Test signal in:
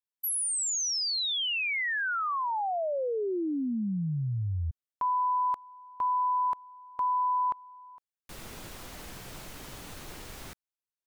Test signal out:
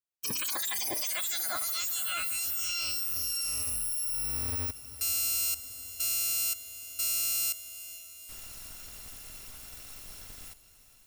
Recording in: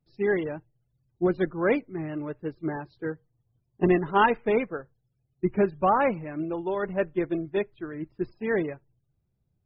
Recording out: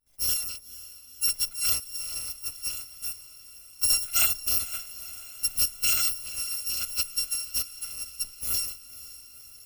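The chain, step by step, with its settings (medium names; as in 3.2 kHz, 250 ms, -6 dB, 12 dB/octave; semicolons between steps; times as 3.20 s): bit-reversed sample order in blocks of 256 samples; echo that smears into a reverb 500 ms, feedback 68%, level -16 dB; trim -2.5 dB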